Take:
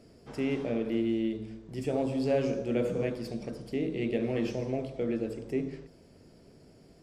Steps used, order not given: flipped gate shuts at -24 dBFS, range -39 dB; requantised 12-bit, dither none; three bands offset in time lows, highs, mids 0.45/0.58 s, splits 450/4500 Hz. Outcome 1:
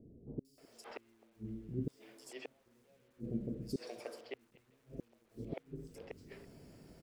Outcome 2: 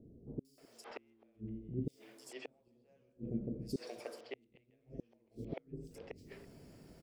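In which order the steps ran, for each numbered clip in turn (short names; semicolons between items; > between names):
flipped gate > requantised > three bands offset in time; requantised > flipped gate > three bands offset in time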